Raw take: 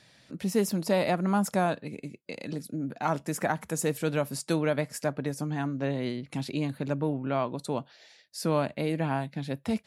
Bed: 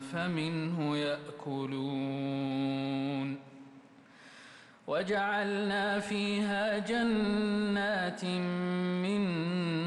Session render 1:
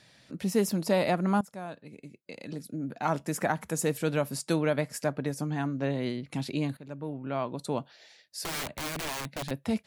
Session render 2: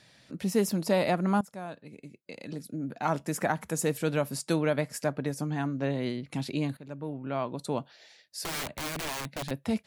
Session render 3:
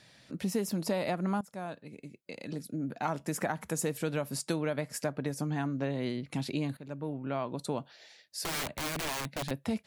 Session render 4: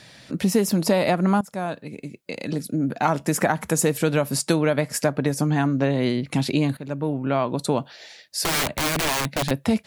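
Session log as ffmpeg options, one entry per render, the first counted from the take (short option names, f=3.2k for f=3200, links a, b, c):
-filter_complex "[0:a]asettb=1/sr,asplit=3[a][b][c];[a]atrim=end=8.434[d];[b]atrim=start=8.43:end=9.51,asetpts=PTS-STARTPTS,afade=t=in:d=0.004:c=qsin,afade=t=out:st=1.076:d=0.004:c=qsin,aeval=exprs='(mod(28.2*val(0)+1,2)-1)/28.2':c=same[e];[c]atrim=start=9.506[f];[d][e]acrossfade=d=0.004:c1=hsin:c2=qsin[g];[g][f]acrossfade=d=0.004:c1=qsin:c2=hsin,asplit=3[h][i][j];[h]atrim=end=1.41,asetpts=PTS-STARTPTS,afade=t=out:st=1.406:d=0.004:c=hsin:silence=0.1[k];[i]atrim=start=1.41:end=6.77,asetpts=PTS-STARTPTS,afade=t=in:d=1.75:silence=0.1,afade=t=out:st=5.356:d=0.004:c=hsin:silence=0.149624[l];[j]atrim=start=6.77,asetpts=PTS-STARTPTS,afade=t=in:d=0.95:silence=0.149624[m];[k][l][m]concat=n=3:v=0:a=1"
-af anull
-af "acompressor=threshold=-28dB:ratio=4"
-af "volume=11.5dB"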